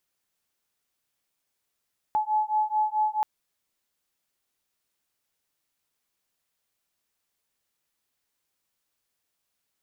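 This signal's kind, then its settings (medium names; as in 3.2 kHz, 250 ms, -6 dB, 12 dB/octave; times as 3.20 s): beating tones 854 Hz, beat 4.6 Hz, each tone -25.5 dBFS 1.08 s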